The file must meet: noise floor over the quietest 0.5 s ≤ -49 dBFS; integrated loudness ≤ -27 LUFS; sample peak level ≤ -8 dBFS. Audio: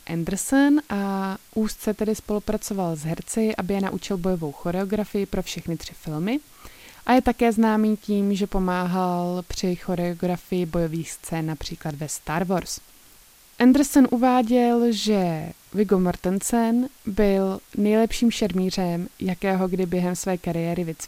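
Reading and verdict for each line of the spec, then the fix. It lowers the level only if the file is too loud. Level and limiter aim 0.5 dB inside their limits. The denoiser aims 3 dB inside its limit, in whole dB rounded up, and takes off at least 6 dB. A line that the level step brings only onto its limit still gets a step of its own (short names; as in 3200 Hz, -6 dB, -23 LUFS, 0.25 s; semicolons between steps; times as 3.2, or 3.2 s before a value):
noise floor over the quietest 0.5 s -52 dBFS: OK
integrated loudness -23.5 LUFS: fail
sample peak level -5.5 dBFS: fail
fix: gain -4 dB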